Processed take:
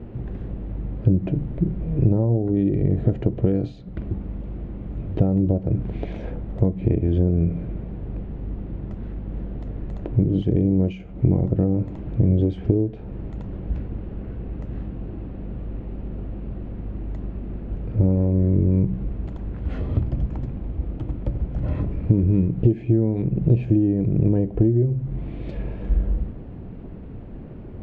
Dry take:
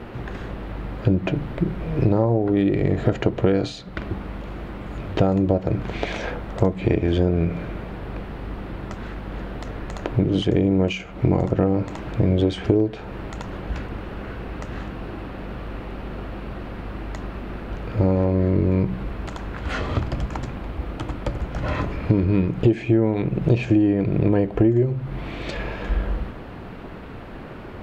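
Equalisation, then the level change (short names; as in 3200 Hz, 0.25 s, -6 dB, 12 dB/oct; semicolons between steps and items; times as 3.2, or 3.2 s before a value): tone controls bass +3 dB, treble -15 dB; bell 1300 Hz -14.5 dB 2.2 oct; high shelf 2100 Hz -9 dB; 0.0 dB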